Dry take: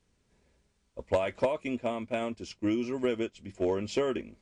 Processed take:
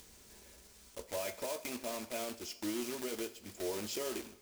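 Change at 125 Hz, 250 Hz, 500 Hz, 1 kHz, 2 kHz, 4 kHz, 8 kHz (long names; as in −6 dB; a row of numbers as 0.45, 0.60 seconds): −13.5, −10.0, −10.0, −9.0, −6.0, 0.0, +8.5 decibels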